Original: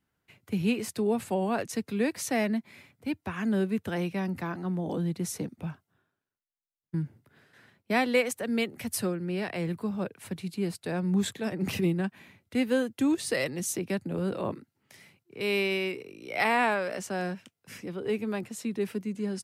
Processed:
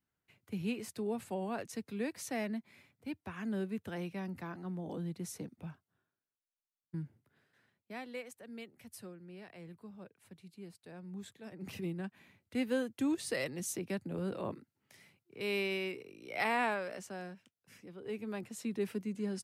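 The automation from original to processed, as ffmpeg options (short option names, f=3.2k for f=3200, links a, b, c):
-af "volume=11.5dB,afade=t=out:st=7:d=0.93:silence=0.334965,afade=t=in:st=11.36:d=1.27:silence=0.251189,afade=t=out:st=16.67:d=0.63:silence=0.446684,afade=t=in:st=17.94:d=0.77:silence=0.354813"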